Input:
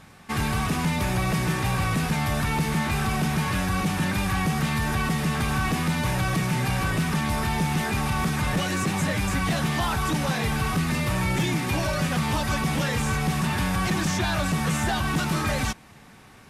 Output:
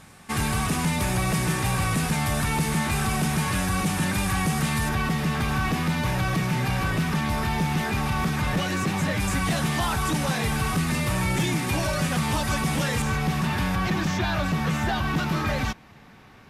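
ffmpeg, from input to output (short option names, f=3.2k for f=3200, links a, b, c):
-af "asetnsamples=n=441:p=0,asendcmd='4.89 equalizer g -4.5;9.2 equalizer g 3.5;13.02 equalizer g -6;13.75 equalizer g -12',equalizer=f=9.1k:t=o:w=1:g=6.5"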